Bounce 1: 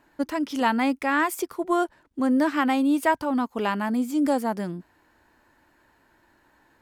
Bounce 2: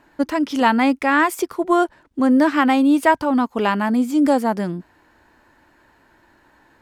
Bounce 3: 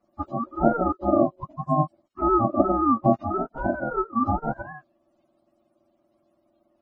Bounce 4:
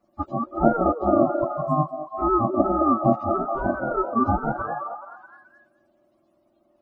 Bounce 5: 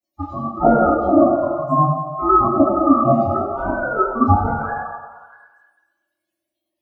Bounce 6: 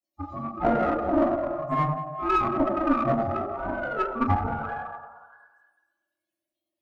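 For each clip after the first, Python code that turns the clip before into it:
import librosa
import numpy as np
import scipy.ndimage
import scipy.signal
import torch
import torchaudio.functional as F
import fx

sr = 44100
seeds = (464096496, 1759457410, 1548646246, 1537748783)

y1 = fx.high_shelf(x, sr, hz=9300.0, db=-7.5)
y1 = y1 * 10.0 ** (6.5 / 20.0)
y2 = fx.octave_mirror(y1, sr, pivot_hz=460.0)
y2 = y2 * np.sin(2.0 * np.pi * 460.0 * np.arange(len(y2)) / sr)
y2 = fx.upward_expand(y2, sr, threshold_db=-35.0, expansion=1.5)
y3 = fx.rider(y2, sr, range_db=4, speed_s=2.0)
y3 = fx.echo_stepped(y3, sr, ms=213, hz=500.0, octaves=0.7, feedback_pct=70, wet_db=-3.5)
y4 = fx.bin_expand(y3, sr, power=1.5)
y4 = fx.rev_fdn(y4, sr, rt60_s=1.2, lf_ratio=0.8, hf_ratio=0.9, size_ms=64.0, drr_db=-5.0)
y4 = y4 * 10.0 ** (2.5 / 20.0)
y5 = fx.diode_clip(y4, sr, knee_db=-14.0)
y5 = y5 * 10.0 ** (-7.0 / 20.0)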